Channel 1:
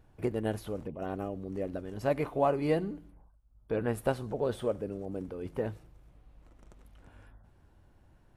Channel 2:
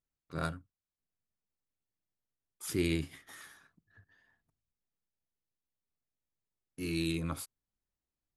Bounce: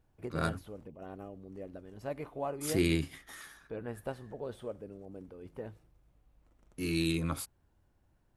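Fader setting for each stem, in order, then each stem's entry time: −9.5, +2.5 decibels; 0.00, 0.00 seconds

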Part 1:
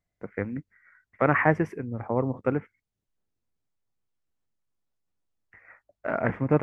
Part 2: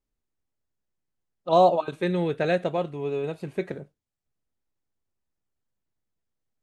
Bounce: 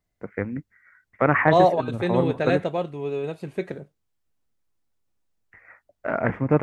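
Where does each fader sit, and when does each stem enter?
+2.5, +0.5 decibels; 0.00, 0.00 seconds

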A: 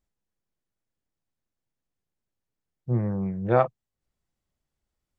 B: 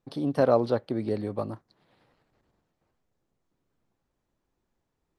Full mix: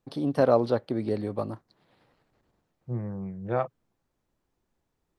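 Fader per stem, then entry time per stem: −7.0, +0.5 decibels; 0.00, 0.00 seconds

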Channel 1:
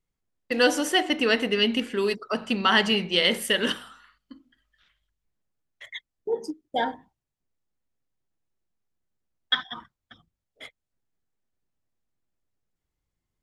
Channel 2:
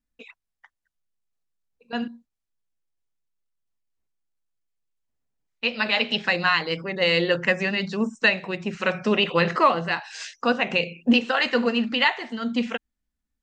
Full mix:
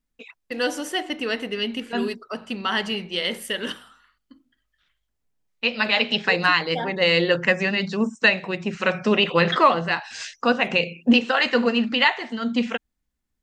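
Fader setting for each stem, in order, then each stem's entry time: −4.0, +2.0 decibels; 0.00, 0.00 seconds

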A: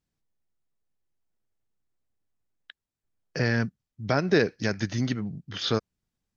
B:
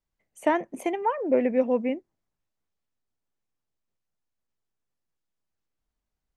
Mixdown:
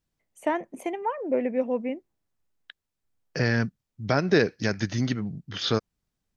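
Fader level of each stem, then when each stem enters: +1.0, −3.0 decibels; 0.00, 0.00 seconds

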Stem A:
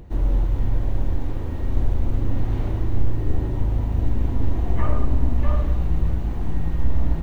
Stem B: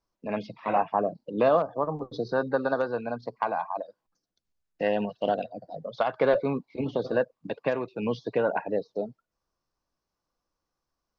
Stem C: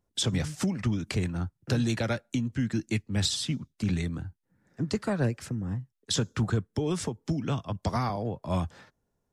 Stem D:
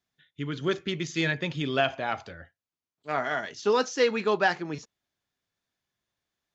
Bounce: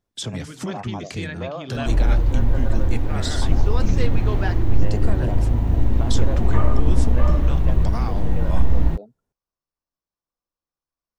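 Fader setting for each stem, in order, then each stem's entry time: +3.0, −10.5, −2.0, −6.5 decibels; 1.75, 0.00, 0.00, 0.00 seconds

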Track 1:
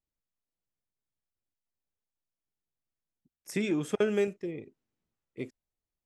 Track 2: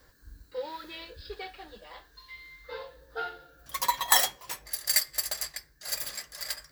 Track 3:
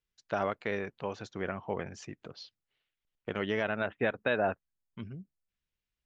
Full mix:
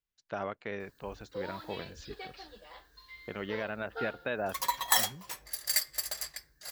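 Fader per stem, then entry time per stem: muted, −4.0 dB, −5.0 dB; muted, 0.80 s, 0.00 s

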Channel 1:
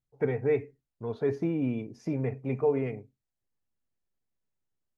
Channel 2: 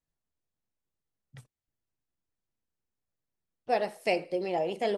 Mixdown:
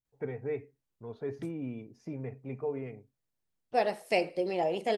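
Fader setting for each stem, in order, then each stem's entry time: −8.5, 0.0 decibels; 0.00, 0.05 seconds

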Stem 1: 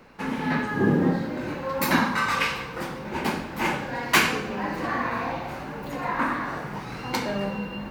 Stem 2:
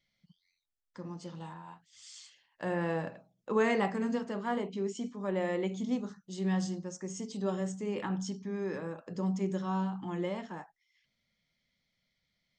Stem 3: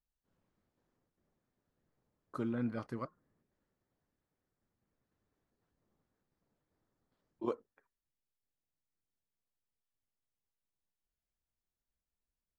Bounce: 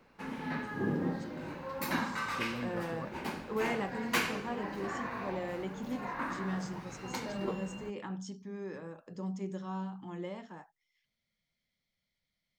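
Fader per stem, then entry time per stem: −11.5, −6.0, −3.5 decibels; 0.00, 0.00, 0.00 seconds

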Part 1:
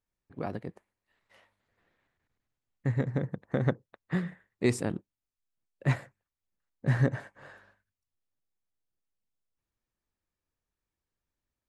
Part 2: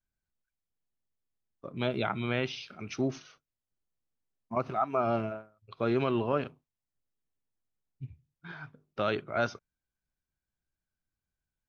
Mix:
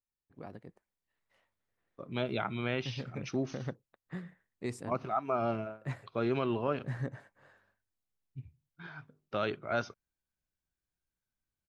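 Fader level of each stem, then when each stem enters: −11.5, −3.0 decibels; 0.00, 0.35 seconds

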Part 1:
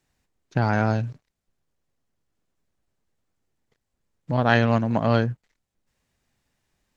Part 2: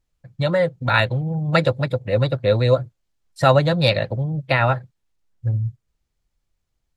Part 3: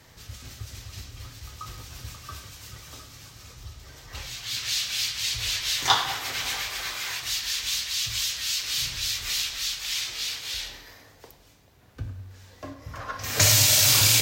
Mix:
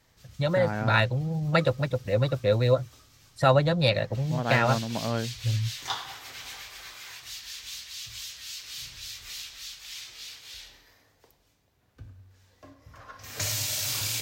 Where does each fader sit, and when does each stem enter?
−9.0, −5.5, −11.5 decibels; 0.00, 0.00, 0.00 seconds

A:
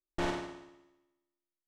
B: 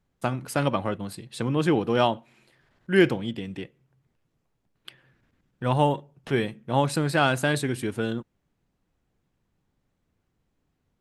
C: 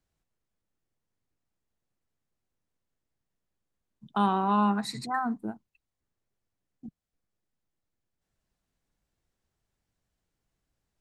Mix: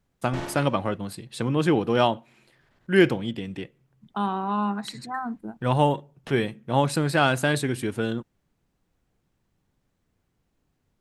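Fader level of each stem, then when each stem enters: −1.0, +1.0, −1.5 decibels; 0.15, 0.00, 0.00 seconds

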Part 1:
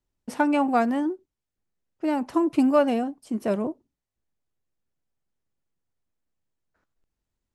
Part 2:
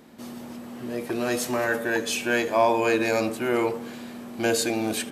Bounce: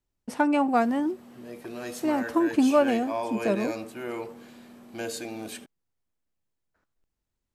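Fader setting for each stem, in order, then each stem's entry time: −1.0, −10.5 decibels; 0.00, 0.55 seconds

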